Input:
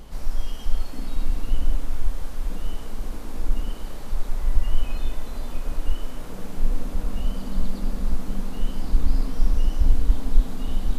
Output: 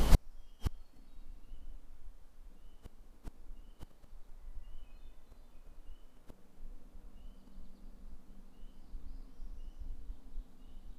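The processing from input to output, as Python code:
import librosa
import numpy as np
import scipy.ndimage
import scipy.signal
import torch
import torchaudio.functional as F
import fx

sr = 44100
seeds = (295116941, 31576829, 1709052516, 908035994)

y = fx.gate_flip(x, sr, shuts_db=-22.0, range_db=-41)
y = y * librosa.db_to_amplitude(13.5)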